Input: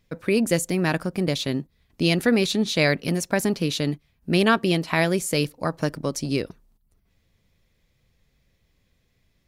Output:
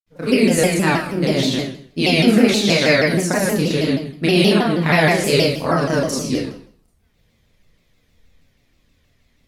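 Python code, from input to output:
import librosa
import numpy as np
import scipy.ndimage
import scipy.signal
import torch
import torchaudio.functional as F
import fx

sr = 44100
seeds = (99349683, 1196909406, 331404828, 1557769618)

y = fx.granulator(x, sr, seeds[0], grain_ms=100.0, per_s=20.0, spray_ms=100.0, spread_st=0)
y = fx.rev_schroeder(y, sr, rt60_s=0.54, comb_ms=25, drr_db=-6.0)
y = fx.vibrato_shape(y, sr, shape='saw_down', rate_hz=6.3, depth_cents=160.0)
y = y * 10.0 ** (1.5 / 20.0)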